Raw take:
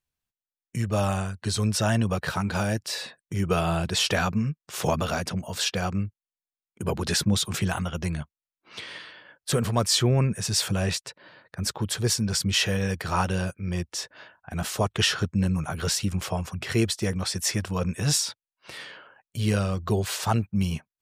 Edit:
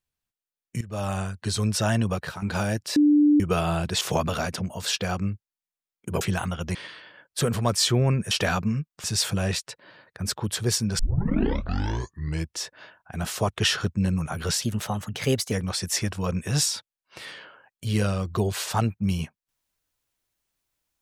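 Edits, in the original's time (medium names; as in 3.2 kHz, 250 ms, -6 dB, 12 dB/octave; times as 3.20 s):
0.81–1.23 s: fade in, from -16 dB
2.11–2.42 s: fade out linear, to -12 dB
2.96–3.40 s: bleep 295 Hz -14 dBFS
4.01–4.74 s: move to 10.42 s
6.94–7.55 s: delete
8.09–8.86 s: delete
12.37 s: tape start 1.54 s
16.00–17.04 s: speed 116%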